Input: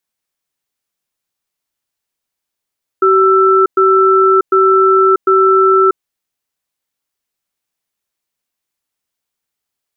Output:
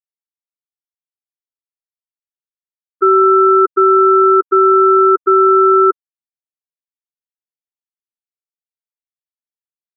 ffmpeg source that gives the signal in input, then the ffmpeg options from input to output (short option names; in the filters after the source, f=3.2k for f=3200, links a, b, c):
-f lavfi -i "aevalsrc='0.355*(sin(2*PI*382*t)+sin(2*PI*1330*t))*clip(min(mod(t,0.75),0.64-mod(t,0.75))/0.005,0,1)':d=3:s=44100"
-af "afftfilt=real='re*gte(hypot(re,im),0.708)':imag='im*gte(hypot(re,im),0.708)':win_size=1024:overlap=0.75"